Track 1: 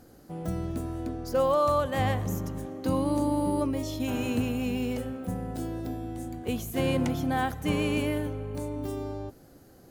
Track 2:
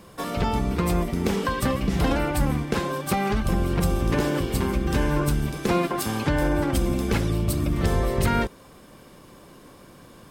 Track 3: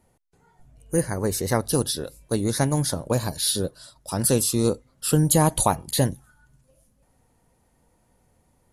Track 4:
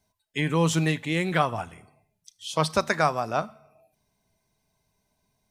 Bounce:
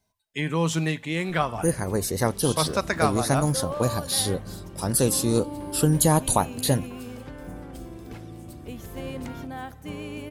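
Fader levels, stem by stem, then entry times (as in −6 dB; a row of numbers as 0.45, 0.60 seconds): −8.5, −19.5, −1.0, −1.5 decibels; 2.20, 1.00, 0.70, 0.00 seconds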